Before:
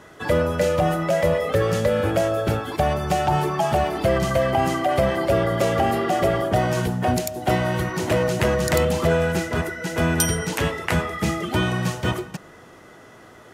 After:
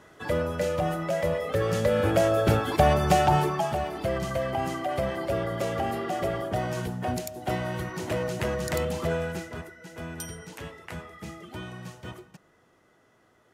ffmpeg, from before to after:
ffmpeg -i in.wav -af "volume=1dB,afade=type=in:start_time=1.48:duration=1.16:silence=0.398107,afade=type=out:start_time=3.14:duration=0.61:silence=0.334965,afade=type=out:start_time=9.14:duration=0.57:silence=0.375837" out.wav

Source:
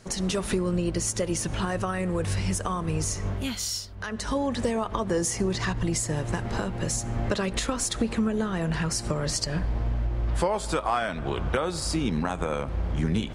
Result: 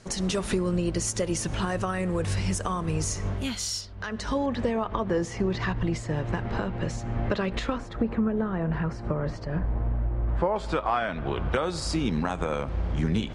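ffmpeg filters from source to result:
ffmpeg -i in.wav -af "asetnsamples=nb_out_samples=441:pad=0,asendcmd='3.81 lowpass f 5500;4.46 lowpass f 3200;7.78 lowpass f 1500;10.56 lowpass f 3500;11.52 lowpass f 7200',lowpass=9900" out.wav

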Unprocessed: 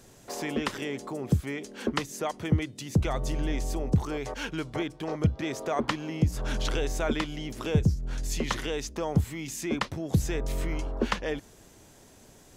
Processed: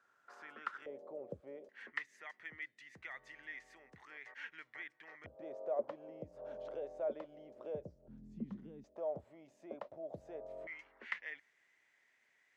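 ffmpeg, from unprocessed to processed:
ffmpeg -i in.wav -af "asetnsamples=nb_out_samples=441:pad=0,asendcmd='0.86 bandpass f 550;1.69 bandpass f 1900;5.26 bandpass f 580;8.08 bandpass f 200;8.84 bandpass f 610;10.67 bandpass f 2000',bandpass=frequency=1400:width_type=q:width=8.5:csg=0" out.wav

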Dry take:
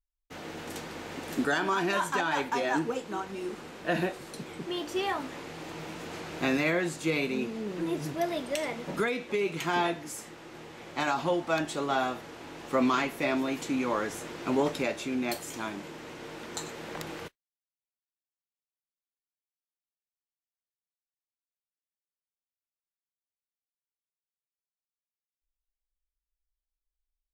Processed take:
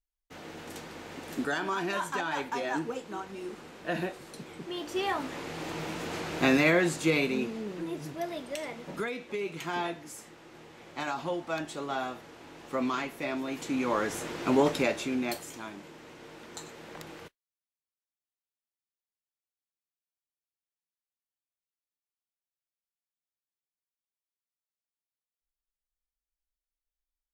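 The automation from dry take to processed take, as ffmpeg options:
ffmpeg -i in.wav -af "volume=12dB,afade=type=in:start_time=4.72:duration=0.93:silence=0.421697,afade=type=out:start_time=6.92:duration=0.97:silence=0.354813,afade=type=in:start_time=13.42:duration=0.8:silence=0.398107,afade=type=out:start_time=14.85:duration=0.76:silence=0.354813" out.wav

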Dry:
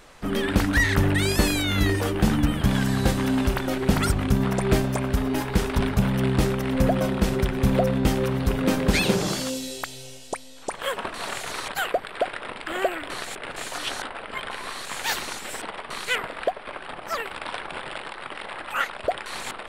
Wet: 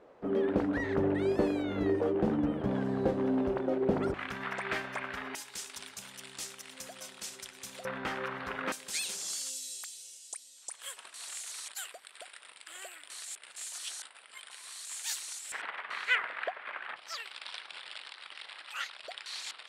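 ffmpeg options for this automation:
ffmpeg -i in.wav -af "asetnsamples=nb_out_samples=441:pad=0,asendcmd='4.14 bandpass f 1800;5.35 bandpass f 7200;7.85 bandpass f 1500;8.72 bandpass f 8000;15.52 bandpass f 1800;16.96 bandpass f 4800',bandpass=frequency=450:width_type=q:width=1.6:csg=0" out.wav

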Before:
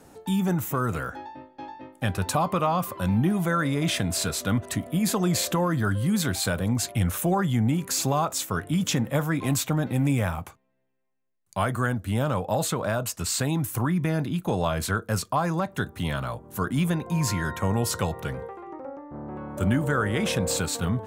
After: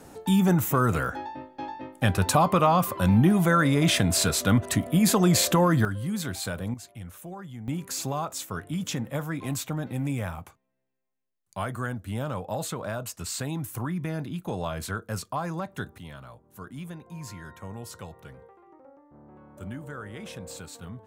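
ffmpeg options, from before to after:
ffmpeg -i in.wav -af "asetnsamples=nb_out_samples=441:pad=0,asendcmd='5.85 volume volume -6dB;6.74 volume volume -16.5dB;7.68 volume volume -6dB;15.98 volume volume -14.5dB',volume=3.5dB" out.wav

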